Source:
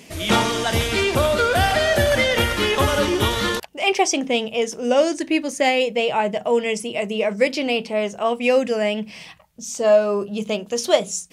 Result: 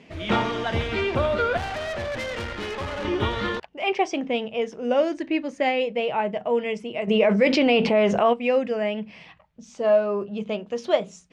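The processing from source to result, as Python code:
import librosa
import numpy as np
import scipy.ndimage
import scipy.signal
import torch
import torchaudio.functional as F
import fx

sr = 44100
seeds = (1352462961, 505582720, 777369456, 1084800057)

y = scipy.signal.sosfilt(scipy.signal.butter(2, 2700.0, 'lowpass', fs=sr, output='sos'), x)
y = fx.tube_stage(y, sr, drive_db=23.0, bias=0.8, at=(1.57, 3.05))
y = fx.env_flatten(y, sr, amount_pct=70, at=(7.07, 8.32), fade=0.02)
y = y * librosa.db_to_amplitude(-4.0)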